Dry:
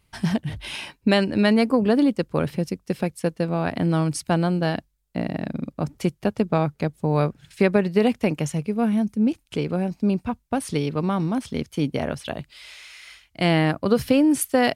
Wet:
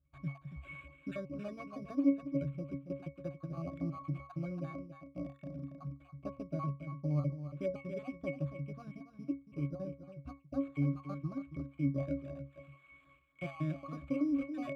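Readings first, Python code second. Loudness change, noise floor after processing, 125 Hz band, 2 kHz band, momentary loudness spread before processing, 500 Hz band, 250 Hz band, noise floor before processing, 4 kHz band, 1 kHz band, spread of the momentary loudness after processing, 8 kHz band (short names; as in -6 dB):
-16.0 dB, -64 dBFS, -12.5 dB, -21.5 dB, 12 LU, -19.5 dB, -15.5 dB, -67 dBFS, under -30 dB, -21.5 dB, 13 LU, under -35 dB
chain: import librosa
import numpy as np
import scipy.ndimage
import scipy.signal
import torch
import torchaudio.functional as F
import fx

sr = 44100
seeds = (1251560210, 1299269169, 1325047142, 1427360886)

p1 = fx.spec_dropout(x, sr, seeds[0], share_pct=36)
p2 = p1 + 10.0 ** (-10.0 / 20.0) * np.pad(p1, (int(279 * sr / 1000.0), 0))[:len(p1)]
p3 = fx.level_steps(p2, sr, step_db=13)
p4 = p2 + (p3 * 10.0 ** (-0.5 / 20.0))
p5 = fx.high_shelf(p4, sr, hz=7600.0, db=-9.0)
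p6 = fx.sample_hold(p5, sr, seeds[1], rate_hz=5400.0, jitter_pct=0)
p7 = fx.tilt_shelf(p6, sr, db=-3.5, hz=970.0)
p8 = fx.octave_resonator(p7, sr, note='C#', decay_s=0.24)
y = p8 * 10.0 ** (-2.0 / 20.0)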